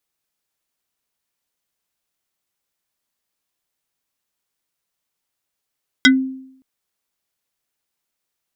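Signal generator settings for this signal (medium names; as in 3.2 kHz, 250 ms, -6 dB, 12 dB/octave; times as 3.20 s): FM tone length 0.57 s, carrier 263 Hz, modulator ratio 6.69, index 3.1, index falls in 0.13 s exponential, decay 0.71 s, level -5 dB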